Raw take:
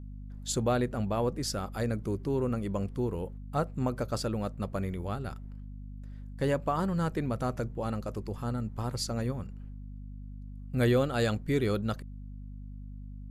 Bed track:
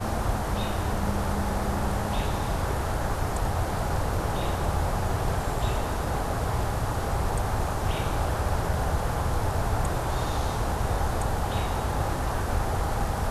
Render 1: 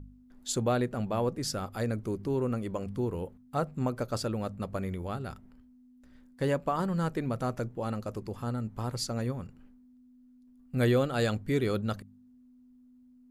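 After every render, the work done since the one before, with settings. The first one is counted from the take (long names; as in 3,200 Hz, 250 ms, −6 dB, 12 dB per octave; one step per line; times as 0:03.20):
hum removal 50 Hz, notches 4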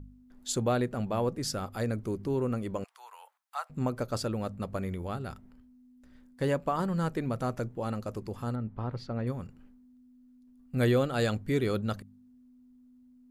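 0:02.84–0:03.70: Butterworth high-pass 820 Hz
0:08.55–0:09.27: high-frequency loss of the air 340 metres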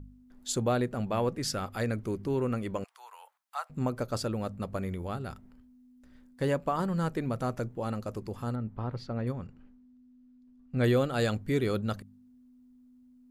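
0:01.03–0:02.79: dynamic equaliser 2,200 Hz, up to +5 dB, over −50 dBFS, Q 0.87
0:09.32–0:10.84: high-frequency loss of the air 100 metres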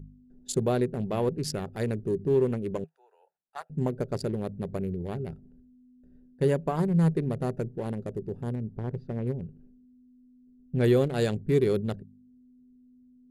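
adaptive Wiener filter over 41 samples
thirty-one-band graphic EQ 160 Hz +11 dB, 400 Hz +10 dB, 1,250 Hz −6 dB, 10,000 Hz +6 dB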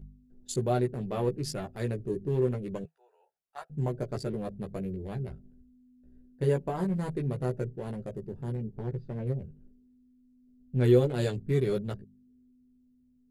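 floating-point word with a short mantissa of 8 bits
multi-voice chorus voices 6, 0.21 Hz, delay 15 ms, depth 1.6 ms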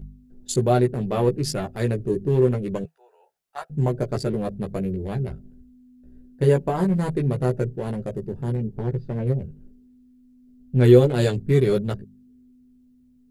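level +8.5 dB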